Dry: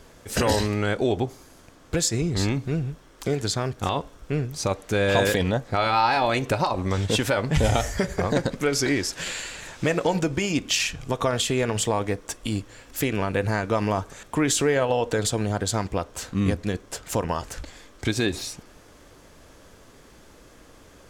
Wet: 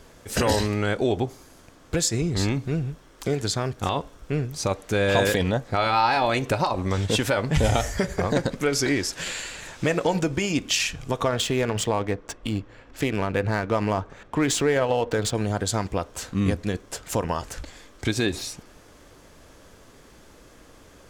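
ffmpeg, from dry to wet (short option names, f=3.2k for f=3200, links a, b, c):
-filter_complex "[0:a]asettb=1/sr,asplit=3[a][b][c];[a]atrim=end=11.234[d];[b]atrim=start=11.23:end=15.35,asetpts=PTS-STARTPTS,afade=t=in:d=0.004:c=qsin,afade=t=out:st=4.116:d=0.004:c=qsin,adynamicsmooth=sensitivity=6.5:basefreq=2.4k[e];[c]atrim=start=15.346[f];[d][e]acrossfade=d=0.004:c1=hsin:c2=qsin[g];[g][f]acrossfade=d=0.004:c1=qsin:c2=hsin"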